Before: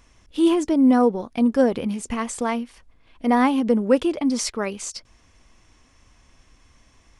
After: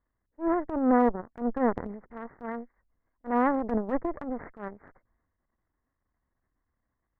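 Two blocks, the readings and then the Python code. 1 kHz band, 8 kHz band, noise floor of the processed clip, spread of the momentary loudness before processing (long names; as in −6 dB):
−4.0 dB, below −40 dB, −82 dBFS, 13 LU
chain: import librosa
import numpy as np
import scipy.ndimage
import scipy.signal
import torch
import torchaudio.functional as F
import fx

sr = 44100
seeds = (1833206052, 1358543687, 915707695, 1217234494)

y = fx.cheby_harmonics(x, sr, harmonics=(3, 4, 5, 7), levels_db=(-11, -17, -18, -20), full_scale_db=-5.5)
y = scipy.signal.sosfilt(scipy.signal.butter(16, 2000.0, 'lowpass', fs=sr, output='sos'), y)
y = fx.transient(y, sr, attack_db=-12, sustain_db=6)
y = y * 10.0 ** (-2.5 / 20.0)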